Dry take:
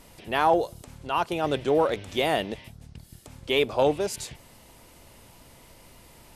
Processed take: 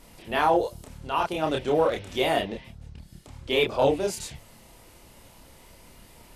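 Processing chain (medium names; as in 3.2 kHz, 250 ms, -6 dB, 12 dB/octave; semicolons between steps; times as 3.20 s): chorus voices 4, 1 Hz, delay 29 ms, depth 3 ms; 2.41–3.51 s: treble shelf 6.8 kHz -> 11 kHz -11.5 dB; trim +3 dB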